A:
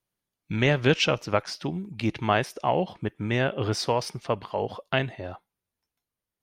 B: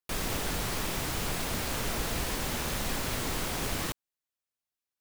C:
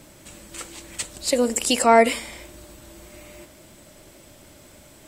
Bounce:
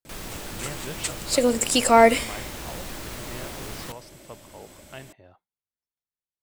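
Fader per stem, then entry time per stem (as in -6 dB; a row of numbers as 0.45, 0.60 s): -16.5, -4.5, 0.0 dB; 0.00, 0.00, 0.05 s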